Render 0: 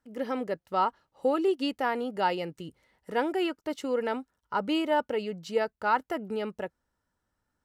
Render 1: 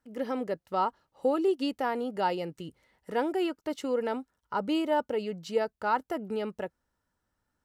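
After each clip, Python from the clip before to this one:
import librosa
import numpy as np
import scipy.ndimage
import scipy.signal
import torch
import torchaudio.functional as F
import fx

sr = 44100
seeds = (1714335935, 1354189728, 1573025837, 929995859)

y = fx.dynamic_eq(x, sr, hz=2100.0, q=0.78, threshold_db=-40.0, ratio=4.0, max_db=-5)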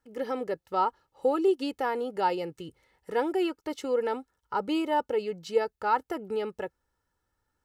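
y = x + 0.42 * np.pad(x, (int(2.3 * sr / 1000.0), 0))[:len(x)]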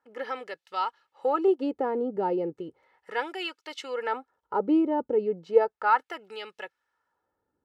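y = fx.filter_lfo_bandpass(x, sr, shape='sine', hz=0.35, low_hz=250.0, high_hz=3200.0, q=1.0)
y = y * 10.0 ** (6.5 / 20.0)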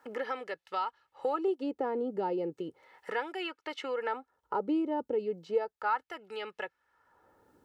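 y = fx.band_squash(x, sr, depth_pct=70)
y = y * 10.0 ** (-5.5 / 20.0)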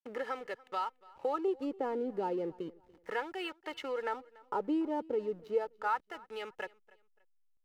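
y = fx.backlash(x, sr, play_db=-47.0)
y = fx.echo_feedback(y, sr, ms=288, feedback_pct=30, wet_db=-23)
y = y * 10.0 ** (-2.0 / 20.0)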